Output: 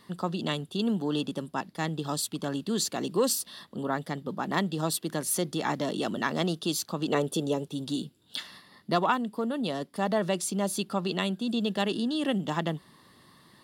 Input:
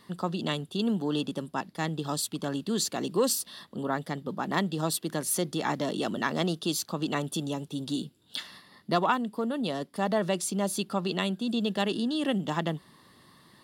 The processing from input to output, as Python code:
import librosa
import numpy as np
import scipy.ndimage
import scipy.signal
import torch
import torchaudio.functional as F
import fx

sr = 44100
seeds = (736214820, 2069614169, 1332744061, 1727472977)

y = fx.peak_eq(x, sr, hz=470.0, db=11.0, octaves=0.69, at=(7.08, 7.68))